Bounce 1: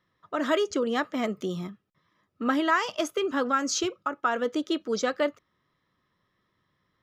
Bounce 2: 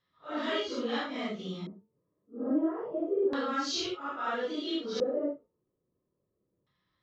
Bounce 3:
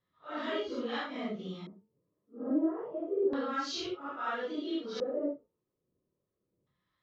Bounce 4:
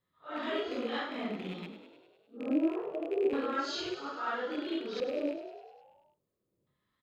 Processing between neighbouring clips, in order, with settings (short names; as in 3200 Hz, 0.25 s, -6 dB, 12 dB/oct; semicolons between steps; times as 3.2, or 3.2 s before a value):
phase scrambler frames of 0.2 s; de-hum 224.8 Hz, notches 5; LFO low-pass square 0.3 Hz 470–4200 Hz; gain -6 dB
high shelf 5200 Hz -10 dB; harmonic tremolo 1.5 Hz, depth 50%, crossover 740 Hz
rattling part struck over -45 dBFS, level -36 dBFS; notch 5700 Hz, Q 7.6; on a send: frequency-shifting echo 0.101 s, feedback 65%, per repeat +39 Hz, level -11 dB